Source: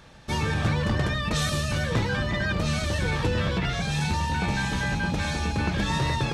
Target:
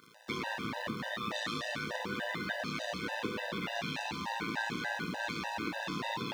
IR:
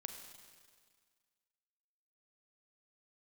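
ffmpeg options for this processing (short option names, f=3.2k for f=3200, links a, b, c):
-filter_complex "[0:a]tremolo=f=110:d=0.974,equalizer=f=450:t=o:w=0.39:g=-4,acrusher=bits=8:dc=4:mix=0:aa=0.000001,acompressor=threshold=-30dB:ratio=6,highpass=270,acrossover=split=5200[a][b];[b]acompressor=threshold=-60dB:ratio=4:attack=1:release=60[c];[a][c]amix=inputs=2:normalize=0[d];[1:a]atrim=start_sample=2205[e];[d][e]afir=irnorm=-1:irlink=0,afftfilt=real='re*gt(sin(2*PI*3.4*pts/sr)*(1-2*mod(floor(b*sr/1024/510),2)),0)':imag='im*gt(sin(2*PI*3.4*pts/sr)*(1-2*mod(floor(b*sr/1024/510),2)),0)':win_size=1024:overlap=0.75,volume=8.5dB"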